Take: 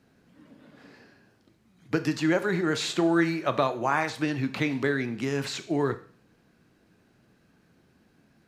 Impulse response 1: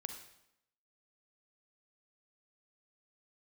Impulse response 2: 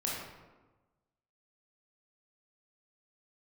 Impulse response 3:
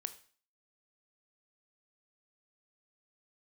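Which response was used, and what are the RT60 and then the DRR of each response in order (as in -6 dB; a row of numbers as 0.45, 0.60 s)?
3; 0.80, 1.2, 0.45 s; 6.0, -5.0, 10.5 dB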